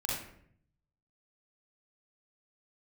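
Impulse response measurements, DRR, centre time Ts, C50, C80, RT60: -4.5 dB, 58 ms, 0.0 dB, 4.5 dB, 0.65 s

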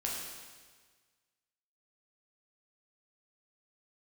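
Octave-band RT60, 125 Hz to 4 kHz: 1.7, 1.5, 1.5, 1.5, 1.5, 1.5 s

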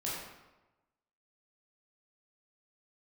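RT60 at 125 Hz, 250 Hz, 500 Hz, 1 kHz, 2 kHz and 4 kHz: 1.1, 1.0, 1.1, 1.1, 0.90, 0.75 s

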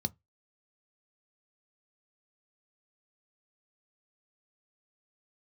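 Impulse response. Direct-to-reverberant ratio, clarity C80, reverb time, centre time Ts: 11.0 dB, 40.0 dB, 0.15 s, 3 ms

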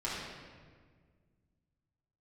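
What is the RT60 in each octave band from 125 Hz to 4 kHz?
2.7, 2.5, 1.9, 1.5, 1.4, 1.1 s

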